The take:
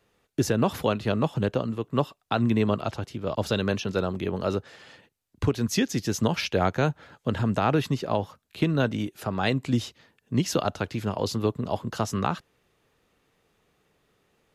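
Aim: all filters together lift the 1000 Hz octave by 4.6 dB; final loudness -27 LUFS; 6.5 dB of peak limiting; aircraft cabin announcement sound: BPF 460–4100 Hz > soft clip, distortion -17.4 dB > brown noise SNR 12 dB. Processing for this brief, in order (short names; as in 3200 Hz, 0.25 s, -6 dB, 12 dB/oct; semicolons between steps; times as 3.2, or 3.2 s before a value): bell 1000 Hz +6.5 dB; limiter -12.5 dBFS; BPF 460–4100 Hz; soft clip -17.5 dBFS; brown noise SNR 12 dB; gain +5.5 dB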